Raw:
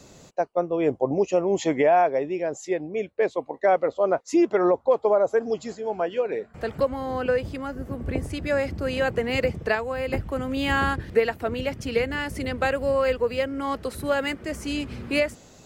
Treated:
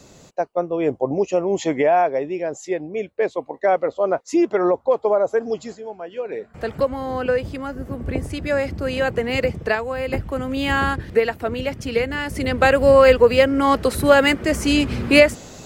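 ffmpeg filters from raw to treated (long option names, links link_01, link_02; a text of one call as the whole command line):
ffmpeg -i in.wav -af "volume=22dB,afade=type=out:start_time=5.61:duration=0.38:silence=0.281838,afade=type=in:start_time=5.99:duration=0.63:silence=0.251189,afade=type=in:start_time=12.23:duration=0.7:silence=0.398107" out.wav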